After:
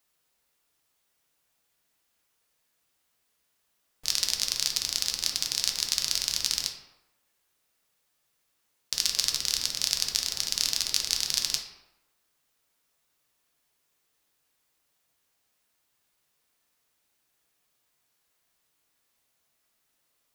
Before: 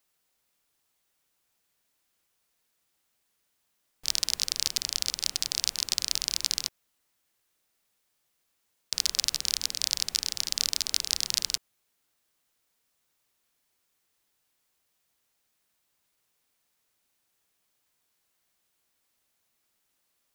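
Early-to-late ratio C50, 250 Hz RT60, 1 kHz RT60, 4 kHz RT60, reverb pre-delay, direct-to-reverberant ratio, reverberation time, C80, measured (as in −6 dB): 7.5 dB, 0.85 s, 0.95 s, 0.60 s, 4 ms, 2.5 dB, 0.95 s, 9.5 dB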